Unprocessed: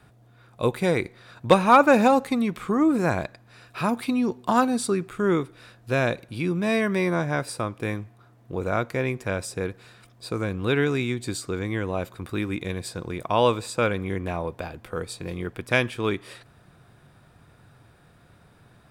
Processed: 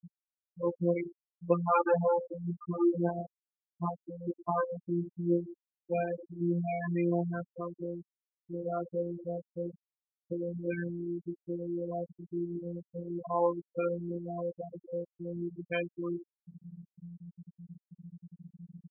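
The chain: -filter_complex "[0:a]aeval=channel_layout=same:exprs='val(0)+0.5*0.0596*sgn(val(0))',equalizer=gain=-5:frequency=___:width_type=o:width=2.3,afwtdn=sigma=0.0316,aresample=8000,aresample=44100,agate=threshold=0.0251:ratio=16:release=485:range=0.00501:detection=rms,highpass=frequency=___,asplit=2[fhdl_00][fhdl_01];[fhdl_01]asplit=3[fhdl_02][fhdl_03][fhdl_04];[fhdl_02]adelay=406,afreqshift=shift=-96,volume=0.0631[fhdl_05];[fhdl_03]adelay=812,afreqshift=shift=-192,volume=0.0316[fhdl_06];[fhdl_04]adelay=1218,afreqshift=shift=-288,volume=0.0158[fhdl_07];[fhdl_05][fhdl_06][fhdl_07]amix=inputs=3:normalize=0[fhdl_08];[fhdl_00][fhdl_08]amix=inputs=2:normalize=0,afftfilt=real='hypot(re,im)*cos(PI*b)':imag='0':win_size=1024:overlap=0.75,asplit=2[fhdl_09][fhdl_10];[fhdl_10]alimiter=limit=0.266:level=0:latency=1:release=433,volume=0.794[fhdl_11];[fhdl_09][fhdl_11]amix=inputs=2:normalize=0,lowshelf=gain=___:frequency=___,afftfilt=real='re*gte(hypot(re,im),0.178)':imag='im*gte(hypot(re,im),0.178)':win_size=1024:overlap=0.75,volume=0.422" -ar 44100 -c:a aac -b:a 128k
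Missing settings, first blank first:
1500, 78, -9.5, 180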